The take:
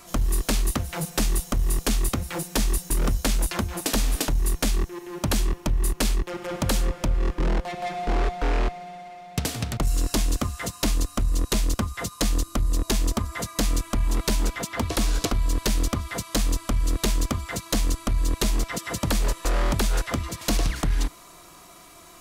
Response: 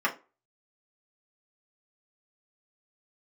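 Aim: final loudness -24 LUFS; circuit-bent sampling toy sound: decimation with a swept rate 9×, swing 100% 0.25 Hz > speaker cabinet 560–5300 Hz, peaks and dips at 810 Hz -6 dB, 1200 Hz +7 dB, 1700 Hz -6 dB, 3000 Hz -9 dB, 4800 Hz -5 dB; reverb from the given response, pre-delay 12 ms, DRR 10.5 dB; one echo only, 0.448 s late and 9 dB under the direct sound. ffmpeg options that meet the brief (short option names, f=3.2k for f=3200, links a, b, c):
-filter_complex "[0:a]aecho=1:1:448:0.355,asplit=2[a][b];[1:a]atrim=start_sample=2205,adelay=12[c];[b][c]afir=irnorm=-1:irlink=0,volume=-22.5dB[d];[a][d]amix=inputs=2:normalize=0,acrusher=samples=9:mix=1:aa=0.000001:lfo=1:lforange=9:lforate=0.25,highpass=560,equalizer=f=810:t=q:w=4:g=-6,equalizer=f=1.2k:t=q:w=4:g=7,equalizer=f=1.7k:t=q:w=4:g=-6,equalizer=f=3k:t=q:w=4:g=-9,equalizer=f=4.8k:t=q:w=4:g=-5,lowpass=f=5.3k:w=0.5412,lowpass=f=5.3k:w=1.3066,volume=9dB"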